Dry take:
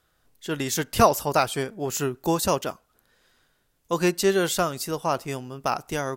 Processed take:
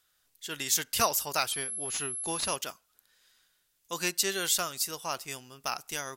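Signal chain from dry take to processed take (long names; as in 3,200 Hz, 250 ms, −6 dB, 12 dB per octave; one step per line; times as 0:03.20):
tilt shelving filter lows −9.5 dB, about 1,400 Hz
0:01.52–0:02.56: switching amplifier with a slow clock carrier 11,000 Hz
level −6.5 dB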